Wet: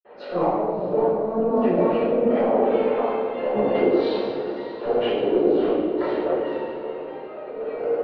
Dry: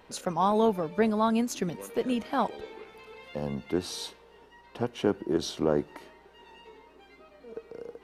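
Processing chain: backward echo that repeats 271 ms, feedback 49%, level -12.5 dB; low-pass that closes with the level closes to 620 Hz, closed at -25 dBFS; steep low-pass 4.8 kHz 36 dB/octave; level-controlled noise filter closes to 1.7 kHz, open at -23 dBFS; high-pass 370 Hz 12 dB/octave; peaking EQ 550 Hz +10.5 dB 0.8 oct; level held to a coarse grid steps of 10 dB; transient shaper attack -11 dB, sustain +5 dB; compressor with a negative ratio -35 dBFS, ratio -0.5; echo that smears into a reverb 624 ms, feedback 40%, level -13.5 dB; reverberation RT60 1.5 s, pre-delay 46 ms; trim +6.5 dB

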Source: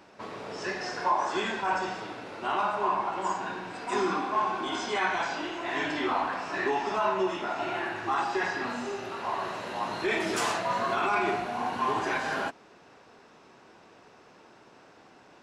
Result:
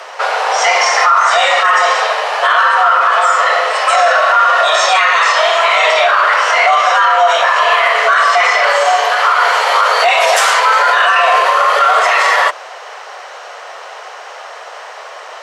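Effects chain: frequency shift +330 Hz; loudness maximiser +25.5 dB; trim -1 dB

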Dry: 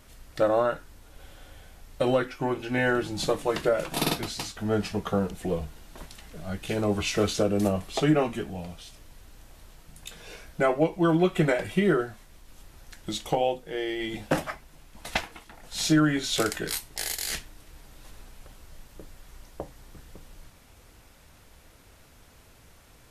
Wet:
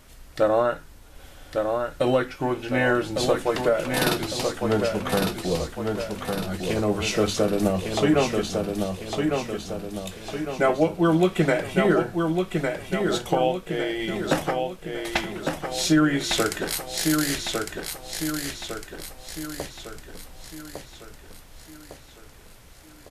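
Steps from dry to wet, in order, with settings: hum notches 50/100/150/200 Hz; feedback delay 1155 ms, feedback 49%, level -4.5 dB; trim +2.5 dB

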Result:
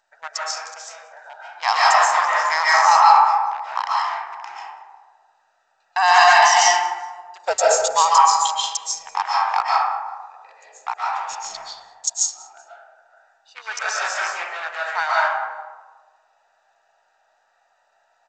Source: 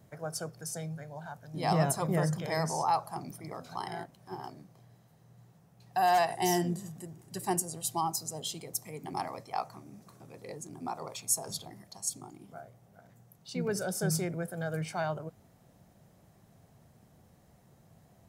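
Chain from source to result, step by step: local Wiener filter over 41 samples; elliptic high-pass 930 Hz, stop band 80 dB; dynamic bell 3.4 kHz, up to -3 dB, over -54 dBFS, Q 0.95; 7.43–7.96 s: frequency shift -270 Hz; 13.68–14.47 s: compressor with a negative ratio -47 dBFS, ratio -1; saturation -18.5 dBFS, distortion -25 dB; 11.27–12.04 s: distance through air 230 m; feedback delay 191 ms, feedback 31%, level -23 dB; algorithmic reverb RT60 1.4 s, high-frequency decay 0.35×, pre-delay 100 ms, DRR -6.5 dB; loudness maximiser +20 dB; trim -1 dB; G.722 64 kbps 16 kHz

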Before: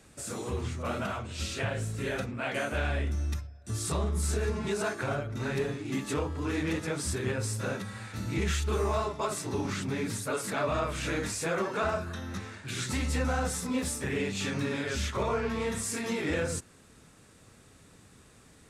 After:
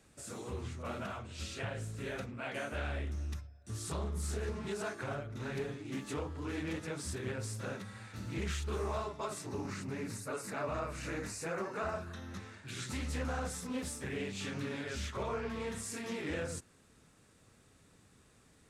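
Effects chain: 9.46–11.95 s: peaking EQ 3.3 kHz -15 dB 0.23 oct; loudspeaker Doppler distortion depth 0.24 ms; trim -7.5 dB

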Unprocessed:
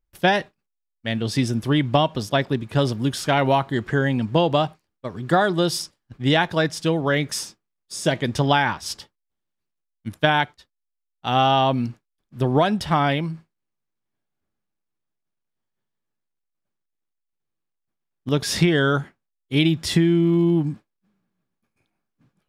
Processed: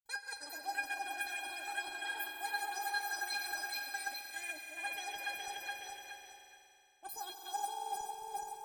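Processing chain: backward echo that repeats 548 ms, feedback 58%, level -3.5 dB; expander -44 dBFS; reverse; compression 10:1, threshold -29 dBFS, peak gain reduction 17.5 dB; reverse; inharmonic resonator 310 Hz, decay 0.45 s, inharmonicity 0.002; on a send: echo with a slow build-up 118 ms, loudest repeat 5, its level -13 dB; on the sum: Chebyshev shaper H 7 -36 dB, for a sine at -32 dBFS; wide varispeed 2.6×; trim +8 dB

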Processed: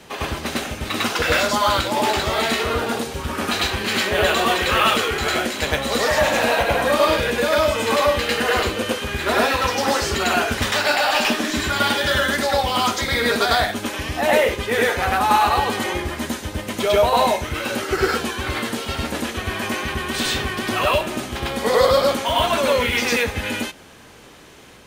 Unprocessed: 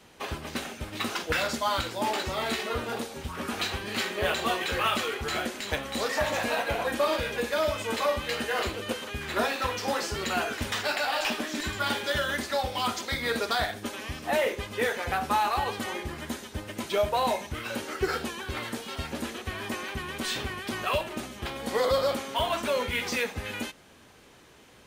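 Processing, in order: reverse echo 101 ms -3 dB; trim +8 dB

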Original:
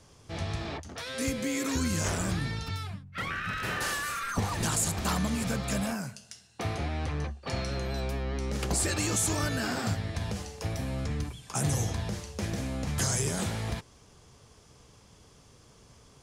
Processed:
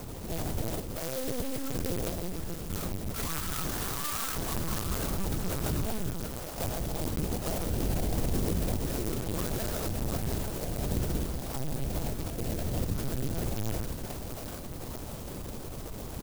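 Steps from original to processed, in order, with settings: jump at every zero crossing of -34.5 dBFS; treble shelf 2.3 kHz -10.5 dB; comb 6.1 ms, depth 49%; dynamic bell 940 Hz, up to -7 dB, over -56 dBFS, Q 7.1; peak limiter -25.5 dBFS, peak gain reduction 9 dB; 2.10–2.70 s: static phaser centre 420 Hz, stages 6; mains buzz 100 Hz, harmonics 27, -47 dBFS -8 dB/octave; two-band feedback delay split 430 Hz, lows 137 ms, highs 716 ms, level -5 dB; LPC vocoder at 8 kHz pitch kept; sampling jitter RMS 0.15 ms

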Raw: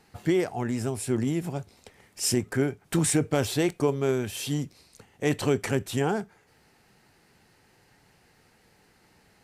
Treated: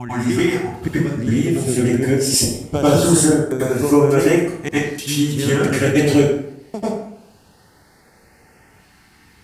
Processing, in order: slices played last to first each 293 ms, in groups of 3; LFO notch saw up 0.23 Hz 460–4200 Hz; transient shaper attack +4 dB, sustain -1 dB; plate-style reverb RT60 0.72 s, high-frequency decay 0.65×, pre-delay 80 ms, DRR -10 dB; trim +1 dB

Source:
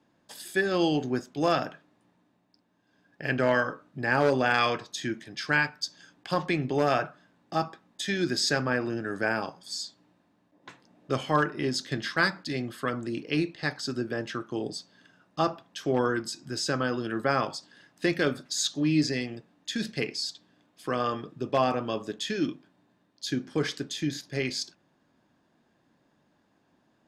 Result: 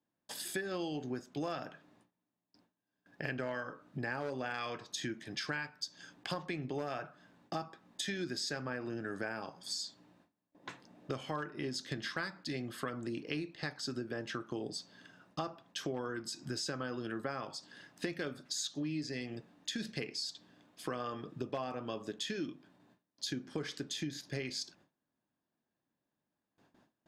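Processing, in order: compression 6:1, threshold -37 dBFS, peak gain reduction 17.5 dB; gate with hold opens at -56 dBFS; trim +1 dB

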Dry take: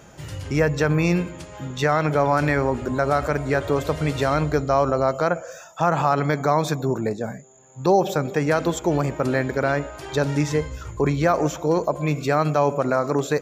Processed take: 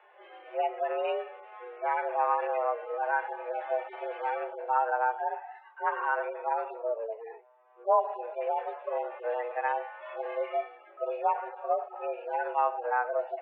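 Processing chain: harmonic-percussive separation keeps harmonic; mistuned SSB +230 Hz 230–2600 Hz; trim -6 dB

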